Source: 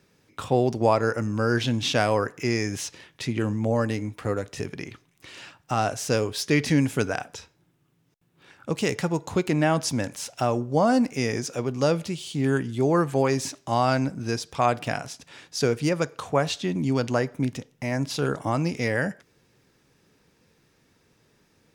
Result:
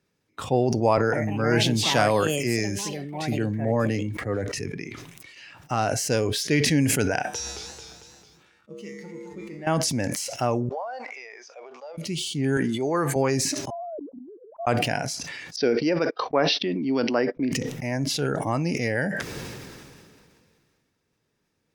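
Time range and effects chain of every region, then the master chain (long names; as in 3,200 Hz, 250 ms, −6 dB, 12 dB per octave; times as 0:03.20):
0:00.97–0:05.36: delay with pitch and tempo change per echo 157 ms, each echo +5 semitones, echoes 2, each echo −6 dB + multiband upward and downward expander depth 40%
0:07.23–0:09.67: tuned comb filter 68 Hz, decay 1 s, harmonics odd, mix 90% + feedback echo with a swinging delay time 223 ms, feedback 59%, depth 184 cents, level −9 dB
0:10.69–0:11.98: downward compressor, threshold −23 dBFS + four-pole ladder high-pass 560 Hz, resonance 25% + high-frequency loss of the air 170 metres
0:12.57–0:13.16: high-pass filter 370 Hz 6 dB per octave + notch filter 3,300 Hz, Q 23
0:13.70–0:14.67: three sine waves on the formant tracks + inverse Chebyshev low-pass filter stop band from 3,000 Hz, stop band 80 dB + gate with flip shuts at −26 dBFS, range −28 dB
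0:15.56–0:17.52: Butterworth low-pass 5,700 Hz 96 dB per octave + noise gate −37 dBFS, range −45 dB + low shelf with overshoot 190 Hz −10.5 dB, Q 1.5
whole clip: noise reduction from a noise print of the clip's start 11 dB; level that may fall only so fast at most 26 dB per second; level −1 dB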